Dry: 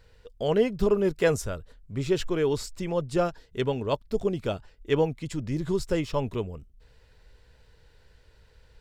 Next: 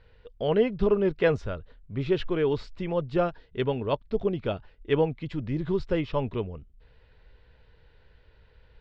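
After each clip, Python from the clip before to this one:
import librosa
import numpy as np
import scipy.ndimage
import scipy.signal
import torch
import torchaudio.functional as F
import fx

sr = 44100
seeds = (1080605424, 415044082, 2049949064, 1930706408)

y = scipy.signal.sosfilt(scipy.signal.butter(4, 3700.0, 'lowpass', fs=sr, output='sos'), x)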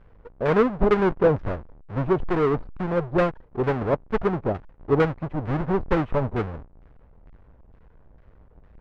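y = fx.halfwave_hold(x, sr)
y = fx.filter_lfo_lowpass(y, sr, shape='saw_down', hz=2.2, low_hz=790.0, high_hz=1800.0, q=0.97)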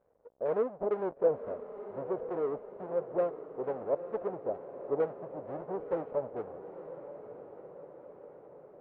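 y = fx.bandpass_q(x, sr, hz=570.0, q=2.4)
y = fx.echo_diffused(y, sr, ms=952, feedback_pct=61, wet_db=-11.5)
y = y * librosa.db_to_amplitude(-5.5)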